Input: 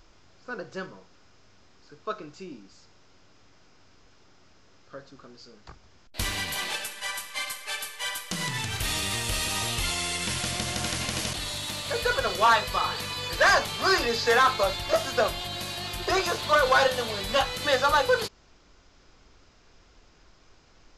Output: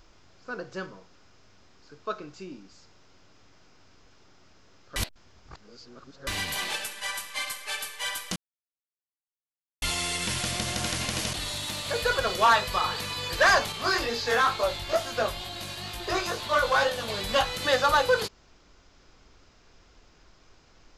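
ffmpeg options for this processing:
ffmpeg -i in.wav -filter_complex "[0:a]asettb=1/sr,asplit=3[link_01][link_02][link_03];[link_01]atrim=end=13.724[link_04];[link_02]atrim=start=13.72:end=17.08,asetpts=PTS-STARTPTS,afade=type=in:duration=0.004:curve=qsin,afade=type=out:start_time=3.356:duration=0.004:curve=qsin,flanger=delay=17:depth=5.3:speed=2.2[link_05];[link_03]atrim=start=17.076[link_06];[link_04][link_05]acrossfade=duration=0.004:curve1=hsin:curve2=qsin[link_07];[link_07][link_06]acrossfade=duration=0.004:curve1=qsin:curve2=hsin,asplit=5[link_08][link_09][link_10][link_11][link_12];[link_08]atrim=end=4.962[link_13];[link_09]atrim=start=4.958:end=6.272,asetpts=PTS-STARTPTS,areverse[link_14];[link_10]atrim=start=6.268:end=8.36,asetpts=PTS-STARTPTS,afade=type=out:start_time=2.088:duration=0.004:curve=hsin[link_15];[link_11]atrim=start=8.36:end=9.82,asetpts=PTS-STARTPTS,volume=0[link_16];[link_12]atrim=start=9.82,asetpts=PTS-STARTPTS,afade=type=in:duration=0.004:curve=hsin[link_17];[link_13][link_14]acrossfade=duration=0.004:curve1=hsin:curve2=hsin[link_18];[link_15][link_16][link_17]concat=n=3:v=0:a=1[link_19];[link_18][link_19]acrossfade=duration=0.004:curve1=hsin:curve2=hsin" out.wav

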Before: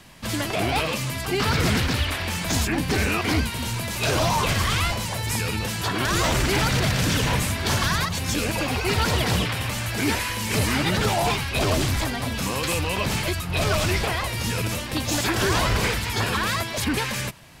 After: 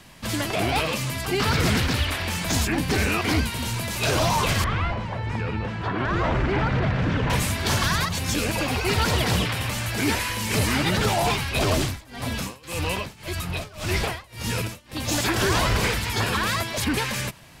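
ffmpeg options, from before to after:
ffmpeg -i in.wav -filter_complex "[0:a]asettb=1/sr,asplit=3[link_01][link_02][link_03];[link_01]atrim=end=4.644[link_04];[link_02]atrim=start=4.64:end=7.3,asetpts=PTS-STARTPTS,afade=type=in:duration=0.004:curve=qsin,afade=type=out:start_time=2.656:duration=0.004:curve=qsin,lowpass=1800[link_05];[link_03]atrim=start=7.296[link_06];[link_04][link_05]acrossfade=duration=0.004:curve1=hsin:curve2=qsin[link_07];[link_07][link_06]acrossfade=duration=0.004:curve1=qsin:curve2=hsin,asettb=1/sr,asplit=3[link_08][link_09][link_10];[link_08]atrim=end=11.774[link_11];[link_09]atrim=start=11.77:end=15.16,asetpts=PTS-STARTPTS,afade=type=in:duration=0.004:curve=qsin,afade=type=out:start_time=3.386:duration=0.004:curve=qsin,tremolo=f=1.8:d=0.95[link_12];[link_10]atrim=start=15.156[link_13];[link_11][link_12]acrossfade=duration=0.004:curve1=hsin:curve2=qsin[link_14];[link_14][link_13]acrossfade=duration=0.004:curve1=qsin:curve2=hsin" out.wav

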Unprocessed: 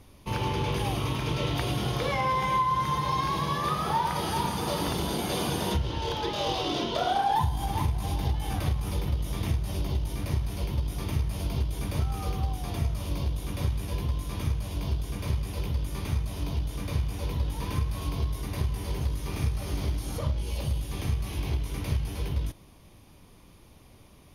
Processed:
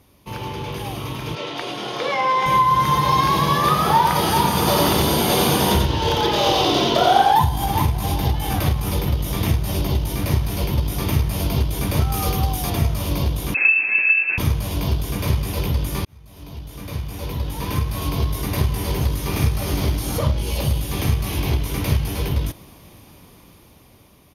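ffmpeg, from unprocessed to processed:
ffmpeg -i in.wav -filter_complex "[0:a]asettb=1/sr,asplit=3[link_01][link_02][link_03];[link_01]atrim=end=1.354[link_04];[link_02]atrim=start=1.35:end=2.46,asetpts=PTS-STARTPTS,afade=type=in:duration=0.004:curve=qsin,afade=type=out:start_time=1.106:duration=0.004:curve=qsin,highpass=320,lowpass=6300[link_05];[link_03]atrim=start=2.456[link_06];[link_04][link_05]acrossfade=duration=0.004:curve1=hsin:curve2=qsin[link_07];[link_07][link_06]acrossfade=duration=0.004:curve1=qsin:curve2=hsin,asplit=3[link_08][link_09][link_10];[link_08]afade=type=out:start_time=4.54:duration=0.02[link_11];[link_09]aecho=1:1:90:0.668,afade=type=in:start_time=4.54:duration=0.02,afade=type=out:start_time=7.31:duration=0.02[link_12];[link_10]afade=type=in:start_time=7.31:duration=0.02[link_13];[link_11][link_12][link_13]amix=inputs=3:normalize=0,asettb=1/sr,asplit=3[link_14][link_15][link_16];[link_14]atrim=end=12.124[link_17];[link_15]atrim=start=12.12:end=12.7,asetpts=PTS-STARTPTS,afade=type=in:duration=0.004:curve=qsin,afade=type=out:start_time=0.576:duration=0.004:curve=qsin,highshelf=frequency=4300:gain=6.5[link_18];[link_16]atrim=start=12.696[link_19];[link_17][link_18]acrossfade=duration=0.004:curve1=hsin:curve2=qsin[link_20];[link_20][link_19]acrossfade=duration=0.004:curve1=qsin:curve2=hsin,asettb=1/sr,asplit=3[link_21][link_22][link_23];[link_21]atrim=end=13.544[link_24];[link_22]atrim=start=13.54:end=14.38,asetpts=PTS-STARTPTS,afade=type=in:duration=0.004:curve=qsin,afade=type=out:start_time=0.836:duration=0.004:curve=qsin,lowpass=frequency=2300:width_type=q:width=0.5098,lowpass=frequency=2300:width_type=q:width=0.6013,lowpass=frequency=2300:width_type=q:width=0.9,lowpass=frequency=2300:width_type=q:width=2.563,afreqshift=-2700[link_25];[link_23]atrim=start=14.376[link_26];[link_24][link_25]acrossfade=duration=0.004:curve1=hsin:curve2=qsin[link_27];[link_27][link_26]acrossfade=duration=0.004:curve1=qsin:curve2=hsin,asplit=2[link_28][link_29];[link_28]atrim=end=16.05,asetpts=PTS-STARTPTS,afade=type=out:start_time=16.046:duration=0.004:curve=hsin[link_30];[link_29]atrim=start=16.05,asetpts=PTS-STARTPTS,afade=type=in:duration=2.36[link_31];[link_30][link_31]concat=n=2:v=0:a=1,highpass=frequency=80:poles=1,equalizer=frequency=13000:width=6.3:gain=12,dynaudnorm=framelen=610:gausssize=7:maxgain=11.5dB" out.wav

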